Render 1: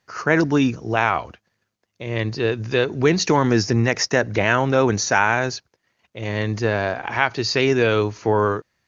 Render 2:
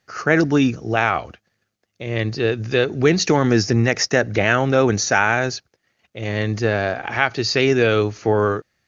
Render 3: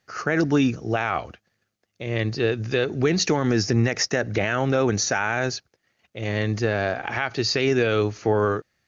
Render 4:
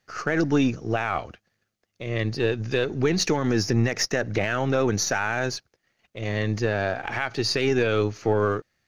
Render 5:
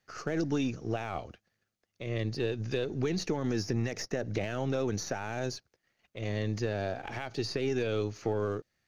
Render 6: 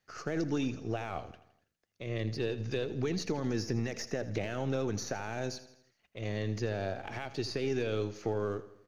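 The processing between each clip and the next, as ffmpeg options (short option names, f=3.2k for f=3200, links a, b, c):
-af "bandreject=f=980:w=5.3,volume=1.5dB"
-af "alimiter=limit=-8.5dB:level=0:latency=1:release=85,volume=-2dB"
-af "aeval=exprs='if(lt(val(0),0),0.708*val(0),val(0))':c=same"
-filter_complex "[0:a]acrossover=split=810|2900[a][b][c];[a]acompressor=threshold=-22dB:ratio=4[d];[b]acompressor=threshold=-42dB:ratio=4[e];[c]acompressor=threshold=-35dB:ratio=4[f];[d][e][f]amix=inputs=3:normalize=0,volume=-5dB"
-af "aecho=1:1:82|164|246|328|410:0.178|0.0925|0.0481|0.025|0.013,volume=-2dB"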